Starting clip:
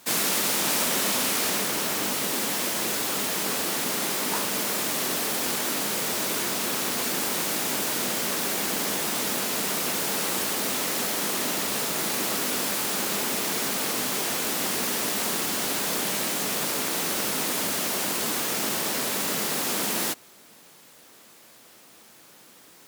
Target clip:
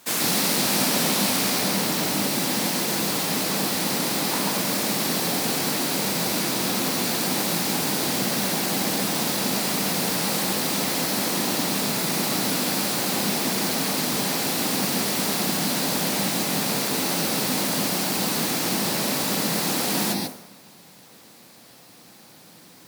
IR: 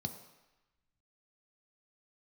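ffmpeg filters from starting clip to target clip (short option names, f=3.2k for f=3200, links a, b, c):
-filter_complex "[0:a]asplit=2[a][b];[1:a]atrim=start_sample=2205,adelay=136[c];[b][c]afir=irnorm=-1:irlink=0,volume=-1.5dB[d];[a][d]amix=inputs=2:normalize=0"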